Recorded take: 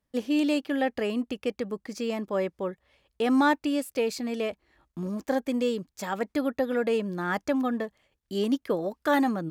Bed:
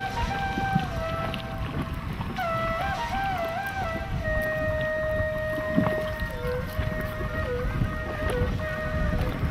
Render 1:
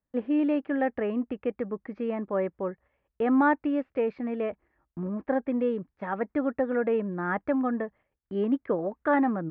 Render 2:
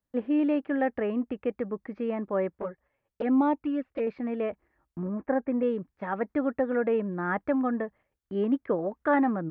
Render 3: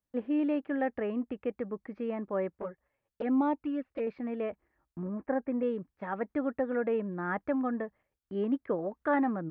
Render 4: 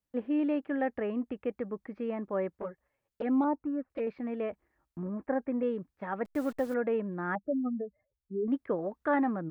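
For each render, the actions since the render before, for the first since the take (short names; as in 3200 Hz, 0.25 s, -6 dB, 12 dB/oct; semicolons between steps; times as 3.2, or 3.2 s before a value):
inverse Chebyshev low-pass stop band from 10000 Hz, stop band 80 dB; gate -52 dBFS, range -7 dB
2.55–4.07 envelope flanger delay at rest 10.7 ms, full sweep at -21 dBFS; 5.02–5.63 LPF 2400 Hz 24 dB/oct
gain -4 dB
3.44–3.9 LPF 1600 Hz 24 dB/oct; 6.25–6.74 level-crossing sampler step -46.5 dBFS; 7.35–8.48 spectral contrast raised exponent 3.7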